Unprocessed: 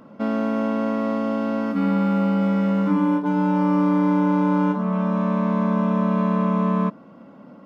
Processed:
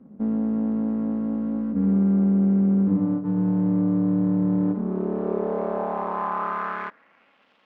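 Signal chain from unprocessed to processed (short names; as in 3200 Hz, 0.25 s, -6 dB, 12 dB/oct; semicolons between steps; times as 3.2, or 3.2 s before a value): half-wave rectifier; band-pass sweep 200 Hz -> 3100 Hz, 4.53–7.51; gain +7.5 dB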